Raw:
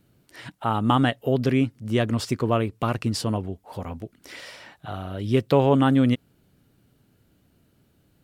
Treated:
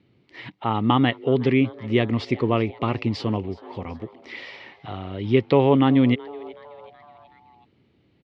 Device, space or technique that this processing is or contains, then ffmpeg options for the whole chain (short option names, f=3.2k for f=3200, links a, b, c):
frequency-shifting delay pedal into a guitar cabinet: -filter_complex "[0:a]asplit=5[a][b][c][d][e];[b]adelay=374,afreqshift=150,volume=-21.5dB[f];[c]adelay=748,afreqshift=300,volume=-26.7dB[g];[d]adelay=1122,afreqshift=450,volume=-31.9dB[h];[e]adelay=1496,afreqshift=600,volume=-37.1dB[i];[a][f][g][h][i]amix=inputs=5:normalize=0,highpass=89,equalizer=f=160:t=q:w=4:g=-4,equalizer=f=370:t=q:w=4:g=3,equalizer=f=630:t=q:w=4:g=-5,equalizer=f=1.5k:t=q:w=4:g=-10,equalizer=f=2.1k:t=q:w=4:g=7,lowpass=f=4.1k:w=0.5412,lowpass=f=4.1k:w=1.3066,volume=2dB"